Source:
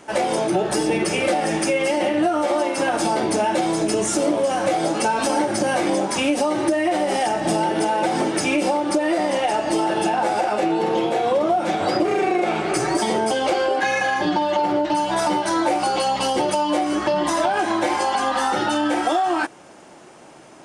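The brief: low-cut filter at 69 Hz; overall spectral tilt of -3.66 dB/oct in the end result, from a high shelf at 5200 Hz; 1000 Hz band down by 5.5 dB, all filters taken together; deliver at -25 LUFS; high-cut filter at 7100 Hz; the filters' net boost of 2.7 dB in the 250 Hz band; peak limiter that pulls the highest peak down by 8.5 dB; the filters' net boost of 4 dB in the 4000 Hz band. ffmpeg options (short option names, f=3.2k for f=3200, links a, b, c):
-af "highpass=69,lowpass=7.1k,equalizer=f=250:t=o:g=4.5,equalizer=f=1k:t=o:g=-8.5,equalizer=f=4k:t=o:g=4,highshelf=f=5.2k:g=5.5,volume=-1dB,alimiter=limit=-17dB:level=0:latency=1"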